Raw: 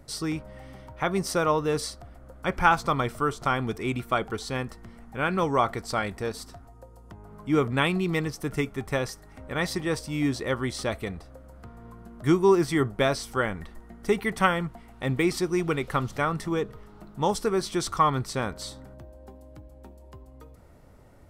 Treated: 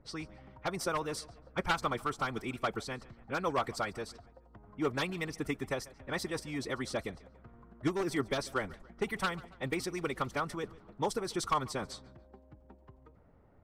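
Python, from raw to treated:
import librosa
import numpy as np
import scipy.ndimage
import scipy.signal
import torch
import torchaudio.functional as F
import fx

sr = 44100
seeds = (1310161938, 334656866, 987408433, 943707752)

p1 = np.minimum(x, 2.0 * 10.0 ** (-16.0 / 20.0) - x)
p2 = fx.echo_feedback(p1, sr, ms=221, feedback_pct=45, wet_db=-21.0)
p3 = 10.0 ** (-23.5 / 20.0) * np.tanh(p2 / 10.0 ** (-23.5 / 20.0))
p4 = p2 + F.gain(torch.from_numpy(p3), -11.0).numpy()
p5 = fx.hpss(p4, sr, part='harmonic', gain_db=-9)
p6 = fx.stretch_vocoder(p5, sr, factor=0.64)
p7 = fx.env_lowpass(p6, sr, base_hz=1700.0, full_db=-28.0)
y = F.gain(torch.from_numpy(p7), -5.5).numpy()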